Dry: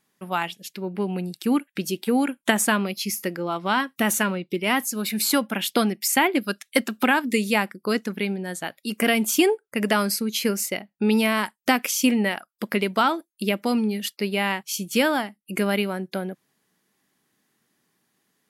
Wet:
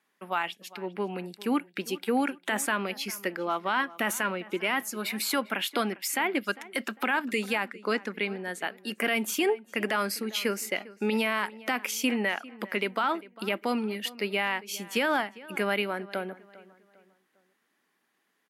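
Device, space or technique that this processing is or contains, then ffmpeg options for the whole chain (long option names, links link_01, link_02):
DJ mixer with the lows and highs turned down: -filter_complex "[0:a]asettb=1/sr,asplit=3[link_01][link_02][link_03];[link_01]atrim=end=7.684[link_04];[link_02]atrim=start=7.68:end=8.28,asetpts=PTS-STARTPTS,afade=type=in:duration=0.004:curve=qsin,afade=type=out:start_time=0.596:duration=0.004:curve=qsin,lowpass=9600[link_05];[link_03]atrim=start=8.276[link_06];[link_04][link_05]acrossfade=duration=0.004:curve1=hsin:curve2=qsin[link_07];[link_07][link_06]acrossfade=duration=0.004:curve1=qsin:curve2=hsin,acrossover=split=200 2700:gain=0.0794 1 0.224[link_08][link_09][link_10];[link_08][link_09][link_10]amix=inputs=3:normalize=0,tiltshelf=frequency=1100:gain=-4.5,alimiter=limit=-17dB:level=0:latency=1:release=43,asplit=2[link_11][link_12];[link_12]adelay=401,lowpass=frequency=3000:poles=1,volume=-19dB,asplit=2[link_13][link_14];[link_14]adelay=401,lowpass=frequency=3000:poles=1,volume=0.38,asplit=2[link_15][link_16];[link_16]adelay=401,lowpass=frequency=3000:poles=1,volume=0.38[link_17];[link_11][link_13][link_15][link_17]amix=inputs=4:normalize=0"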